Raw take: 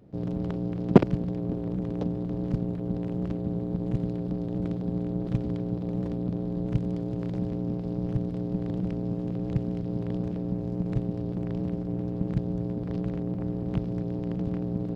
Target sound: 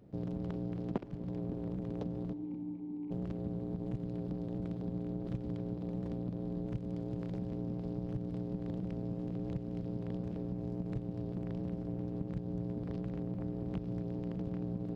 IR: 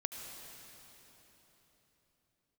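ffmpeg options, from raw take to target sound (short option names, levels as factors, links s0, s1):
-filter_complex "[0:a]asplit=3[s0][s1][s2];[s0]afade=t=out:st=2.32:d=0.02[s3];[s1]asplit=3[s4][s5][s6];[s4]bandpass=f=300:t=q:w=8,volume=1[s7];[s5]bandpass=f=870:t=q:w=8,volume=0.501[s8];[s6]bandpass=f=2240:t=q:w=8,volume=0.355[s9];[s7][s8][s9]amix=inputs=3:normalize=0,afade=t=in:st=2.32:d=0.02,afade=t=out:st=3.1:d=0.02[s10];[s2]afade=t=in:st=3.1:d=0.02[s11];[s3][s10][s11]amix=inputs=3:normalize=0,acompressor=threshold=0.0316:ratio=6,asplit=2[s12][s13];[1:a]atrim=start_sample=2205[s14];[s13][s14]afir=irnorm=-1:irlink=0,volume=0.316[s15];[s12][s15]amix=inputs=2:normalize=0,volume=0.501"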